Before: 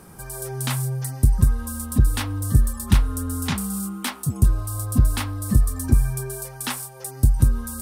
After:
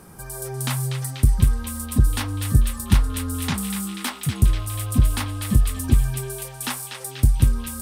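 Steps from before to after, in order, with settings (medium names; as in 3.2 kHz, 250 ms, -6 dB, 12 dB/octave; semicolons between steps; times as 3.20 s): band-passed feedback delay 243 ms, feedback 83%, band-pass 3 kHz, level -5.5 dB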